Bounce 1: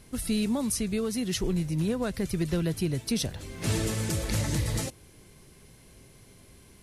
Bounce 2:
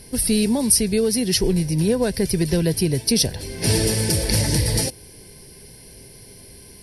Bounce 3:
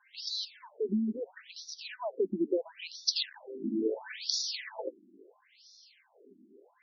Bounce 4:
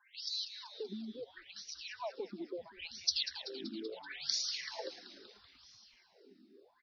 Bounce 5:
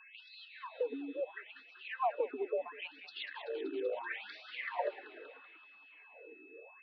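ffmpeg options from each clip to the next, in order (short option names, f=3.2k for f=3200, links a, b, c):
-af "superequalizer=7b=1.58:10b=0.316:14b=2.51:15b=0.631:16b=2.51,volume=7.5dB"
-af "afftfilt=real='re*between(b*sr/1024,250*pow(4900/250,0.5+0.5*sin(2*PI*0.74*pts/sr))/1.41,250*pow(4900/250,0.5+0.5*sin(2*PI*0.74*pts/sr))*1.41)':imag='im*between(b*sr/1024,250*pow(4900/250,0.5+0.5*sin(2*PI*0.74*pts/sr))/1.41,250*pow(4900/250,0.5+0.5*sin(2*PI*0.74*pts/sr))*1.41)':win_size=1024:overlap=0.75,volume=-4.5dB"
-filter_complex "[0:a]acrossover=split=780[a][b];[a]acompressor=threshold=-39dB:ratio=6[c];[b]asplit=8[d][e][f][g][h][i][j][k];[e]adelay=191,afreqshift=-150,volume=-11dB[l];[f]adelay=382,afreqshift=-300,volume=-15.2dB[m];[g]adelay=573,afreqshift=-450,volume=-19.3dB[n];[h]adelay=764,afreqshift=-600,volume=-23.5dB[o];[i]adelay=955,afreqshift=-750,volume=-27.6dB[p];[j]adelay=1146,afreqshift=-900,volume=-31.8dB[q];[k]adelay=1337,afreqshift=-1050,volume=-35.9dB[r];[d][l][m][n][o][p][q][r]amix=inputs=8:normalize=0[s];[c][s]amix=inputs=2:normalize=0,volume=-3dB"
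-filter_complex "[0:a]acrossover=split=300 2400:gain=0.251 1 0.0631[a][b][c];[a][b][c]amix=inputs=3:normalize=0,highpass=f=170:t=q:w=0.5412,highpass=f=170:t=q:w=1.307,lowpass=f=3.4k:t=q:w=0.5176,lowpass=f=3.4k:t=q:w=0.7071,lowpass=f=3.4k:t=q:w=1.932,afreqshift=60,aeval=exprs='val(0)+0.000501*sin(2*PI*2600*n/s)':c=same,volume=9dB"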